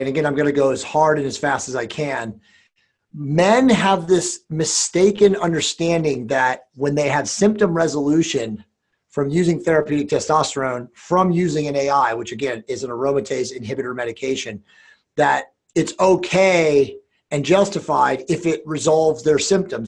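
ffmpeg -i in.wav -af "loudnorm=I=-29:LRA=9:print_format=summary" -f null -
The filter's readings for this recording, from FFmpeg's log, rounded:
Input Integrated:    -18.7 LUFS
Input True Peak:      -1.7 dBTP
Input LRA:             3.4 LU
Input Threshold:     -29.1 LUFS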